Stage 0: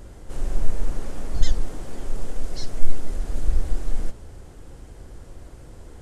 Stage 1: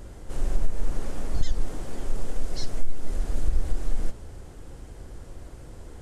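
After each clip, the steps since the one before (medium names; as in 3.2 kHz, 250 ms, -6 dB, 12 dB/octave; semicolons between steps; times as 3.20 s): compression 6:1, threshold -13 dBFS, peak gain reduction 9 dB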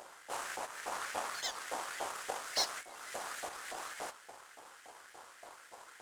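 LFO high-pass saw up 3.5 Hz 700–1900 Hz; power-law waveshaper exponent 1.4; trim +8.5 dB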